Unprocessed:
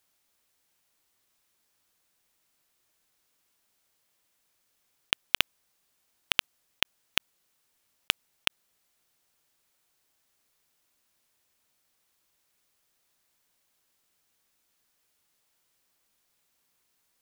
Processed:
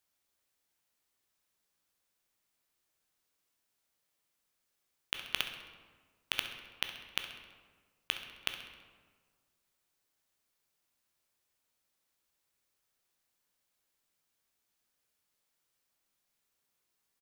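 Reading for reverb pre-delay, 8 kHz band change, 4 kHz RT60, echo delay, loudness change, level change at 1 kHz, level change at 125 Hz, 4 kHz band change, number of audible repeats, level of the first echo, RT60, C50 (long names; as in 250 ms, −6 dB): 12 ms, −8.0 dB, 0.90 s, 66 ms, −8.5 dB, −7.5 dB, −7.0 dB, −8.0 dB, 1, −13.0 dB, 1.6 s, 6.5 dB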